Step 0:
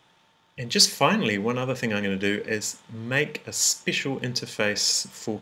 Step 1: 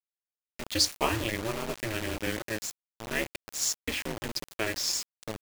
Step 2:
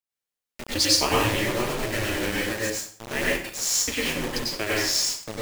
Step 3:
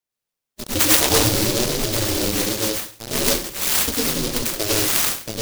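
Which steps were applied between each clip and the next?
ring modulator 110 Hz; de-hum 69.07 Hz, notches 2; bit crusher 5-bit; trim -4.5 dB
plate-style reverb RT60 0.5 s, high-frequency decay 0.85×, pre-delay 85 ms, DRR -5 dB; trim +1 dB
coarse spectral quantiser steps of 15 dB; delay time shaken by noise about 4.5 kHz, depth 0.23 ms; trim +6 dB

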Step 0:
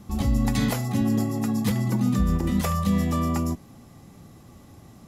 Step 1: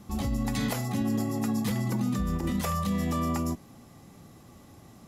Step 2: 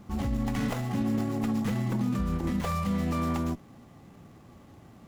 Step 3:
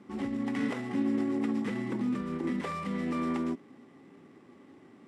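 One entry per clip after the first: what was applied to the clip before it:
peak limiter -17 dBFS, peak gain reduction 4.5 dB; bass shelf 180 Hz -5 dB; trim -1 dB
sliding maximum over 9 samples
cabinet simulation 220–8900 Hz, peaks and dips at 270 Hz +8 dB, 390 Hz +8 dB, 690 Hz -5 dB, 2 kHz +6 dB, 4.4 kHz -4 dB, 6.6 kHz -9 dB; trim -3.5 dB

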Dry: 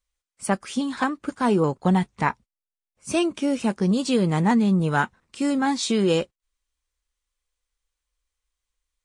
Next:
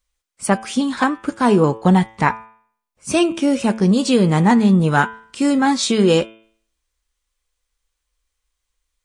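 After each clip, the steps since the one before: de-hum 111.1 Hz, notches 33; trim +6.5 dB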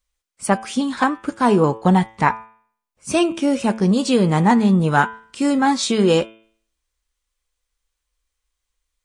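dynamic bell 870 Hz, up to +3 dB, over -25 dBFS, Q 1.1; trim -2 dB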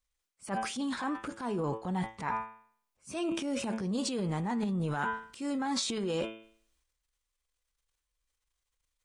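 reverse; compression 6:1, threshold -22 dBFS, peak gain reduction 11.5 dB; reverse; transient shaper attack -4 dB, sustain +9 dB; trim -8 dB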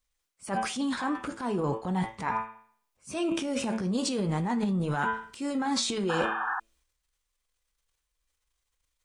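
flange 0.4 Hz, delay 8.2 ms, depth 9.8 ms, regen -73%; painted sound noise, 6.09–6.60 s, 720–1800 Hz -39 dBFS; trim +8 dB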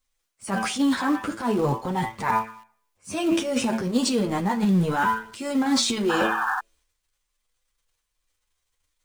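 flange 0.52 Hz, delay 7.4 ms, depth 3.7 ms, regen -1%; in parallel at -10.5 dB: companded quantiser 4-bit; on the sum: trim +6.5 dB

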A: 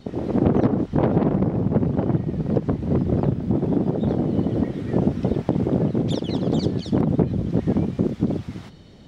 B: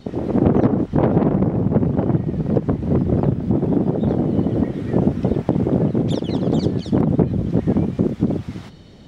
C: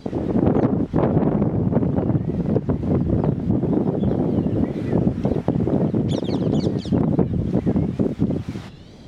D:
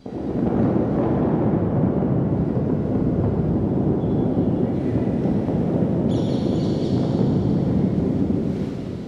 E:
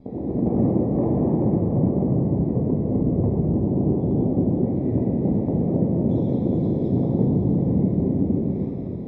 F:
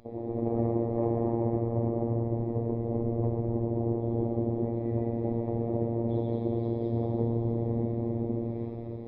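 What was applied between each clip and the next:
dynamic bell 4.5 kHz, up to -4 dB, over -48 dBFS, Q 0.86; trim +3 dB
in parallel at 0 dB: compression, threshold -23 dBFS, peak gain reduction 13 dB; on the sum: wow and flutter 140 cents; trim -4.5 dB
plate-style reverb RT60 4.6 s, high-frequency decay 0.85×, DRR -6 dB; trim -7.5 dB
boxcar filter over 30 samples
resampled via 11.025 kHz; robot voice 116 Hz; peaking EQ 180 Hz -13 dB 1.2 oct

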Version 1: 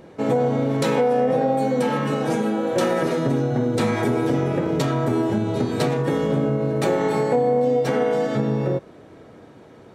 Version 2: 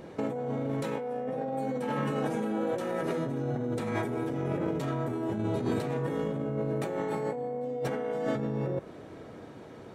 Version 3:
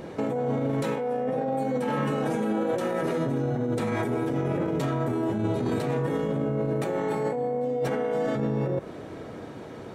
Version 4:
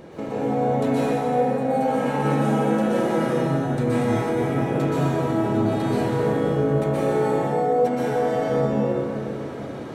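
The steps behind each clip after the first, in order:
dynamic bell 4.8 kHz, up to -6 dB, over -49 dBFS, Q 1.1; compressor with a negative ratio -26 dBFS, ratio -1; trim -5.5 dB
peak limiter -25 dBFS, peak gain reduction 7.5 dB; trim +6.5 dB
plate-style reverb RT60 2.6 s, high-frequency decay 0.8×, pre-delay 110 ms, DRR -9 dB; trim -4 dB

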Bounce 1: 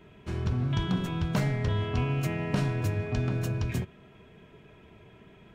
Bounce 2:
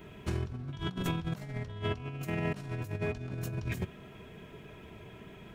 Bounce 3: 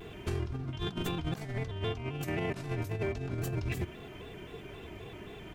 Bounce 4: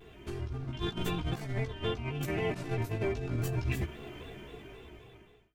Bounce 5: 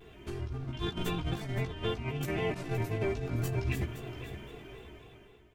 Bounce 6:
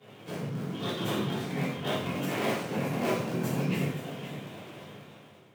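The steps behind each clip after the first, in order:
treble shelf 9 kHz +10.5 dB; compressor with a negative ratio -33 dBFS, ratio -0.5; trim -1.5 dB
comb 2.7 ms, depth 40%; peak limiter -27.5 dBFS, peak gain reduction 8.5 dB; vibrato with a chosen wave square 3.8 Hz, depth 100 cents; trim +3.5 dB
fade out at the end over 1.36 s; level rider gain up to 8 dB; chorus voices 4, 0.46 Hz, delay 16 ms, depth 2.4 ms; trim -4 dB
feedback delay 518 ms, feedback 18%, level -12 dB
cycle switcher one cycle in 3, inverted; frequency shift +93 Hz; gated-style reverb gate 210 ms falling, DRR -7 dB; trim -5 dB

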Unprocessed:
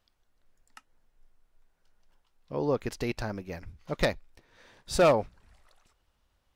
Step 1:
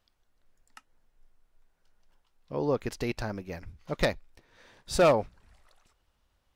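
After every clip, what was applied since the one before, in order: no audible change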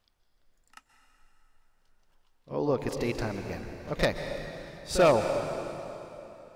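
reverse echo 37 ms -11.5 dB; plate-style reverb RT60 3.2 s, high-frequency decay 0.85×, pre-delay 115 ms, DRR 6.5 dB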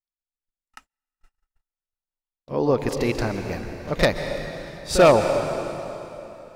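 gate -55 dBFS, range -38 dB; trim +7 dB

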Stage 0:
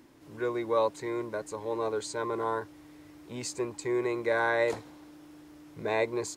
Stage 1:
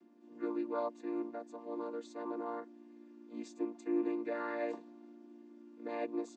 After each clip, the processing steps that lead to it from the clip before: vocoder on a held chord major triad, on A#3; trim -6.5 dB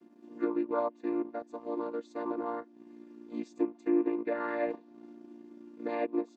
low-pass that closes with the level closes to 2.7 kHz, closed at -33 dBFS; transient shaper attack +3 dB, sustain -8 dB; trim +5 dB

